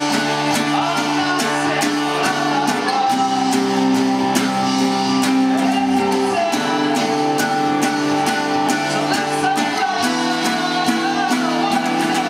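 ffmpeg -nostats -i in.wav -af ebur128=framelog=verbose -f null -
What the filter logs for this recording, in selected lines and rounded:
Integrated loudness:
  I:         -17.4 LUFS
  Threshold: -27.4 LUFS
Loudness range:
  LRA:         1.0 LU
  Threshold: -37.4 LUFS
  LRA low:   -17.8 LUFS
  LRA high:  -16.8 LUFS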